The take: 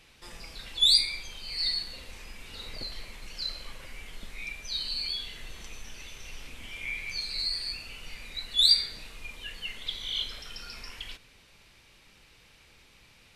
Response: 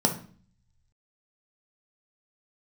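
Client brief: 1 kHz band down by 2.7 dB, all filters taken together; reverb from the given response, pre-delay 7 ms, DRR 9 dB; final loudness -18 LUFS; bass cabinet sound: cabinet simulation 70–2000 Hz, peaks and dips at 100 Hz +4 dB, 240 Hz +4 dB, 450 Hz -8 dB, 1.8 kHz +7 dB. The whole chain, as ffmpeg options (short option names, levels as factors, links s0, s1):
-filter_complex "[0:a]equalizer=f=1000:t=o:g=-4,asplit=2[s0][s1];[1:a]atrim=start_sample=2205,adelay=7[s2];[s1][s2]afir=irnorm=-1:irlink=0,volume=0.0944[s3];[s0][s3]amix=inputs=2:normalize=0,highpass=f=70:w=0.5412,highpass=f=70:w=1.3066,equalizer=f=100:t=q:w=4:g=4,equalizer=f=240:t=q:w=4:g=4,equalizer=f=450:t=q:w=4:g=-8,equalizer=f=1800:t=q:w=4:g=7,lowpass=f=2000:w=0.5412,lowpass=f=2000:w=1.3066,volume=25.1"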